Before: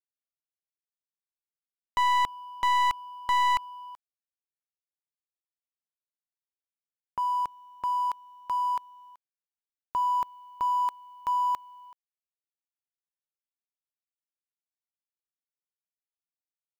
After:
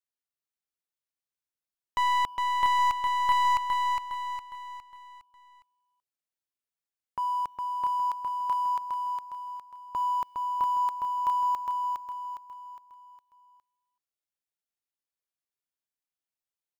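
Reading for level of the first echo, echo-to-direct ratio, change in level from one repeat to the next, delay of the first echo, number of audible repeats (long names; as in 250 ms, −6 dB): −4.0 dB, −3.0 dB, −7.5 dB, 410 ms, 5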